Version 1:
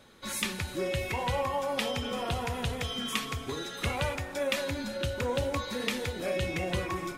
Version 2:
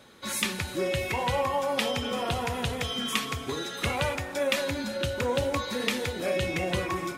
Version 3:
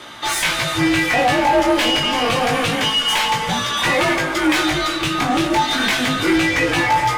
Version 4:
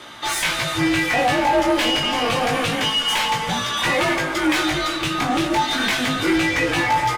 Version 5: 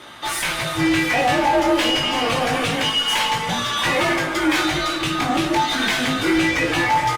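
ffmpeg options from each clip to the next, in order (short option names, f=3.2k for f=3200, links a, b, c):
-af "highpass=f=90:p=1,volume=3.5dB"
-filter_complex "[0:a]afreqshift=-230,asplit=2[a][b];[b]highpass=f=720:p=1,volume=28dB,asoftclip=type=tanh:threshold=-8.5dB[c];[a][c]amix=inputs=2:normalize=0,lowpass=f=3.6k:p=1,volume=-6dB,flanger=delay=17:depth=3.8:speed=0.28,volume=3.5dB"
-af "aecho=1:1:870:0.0944,volume=-2.5dB"
-filter_complex "[0:a]asplit=2[a][b];[b]adelay=50,volume=-11dB[c];[a][c]amix=inputs=2:normalize=0" -ar 48000 -c:a libopus -b:a 32k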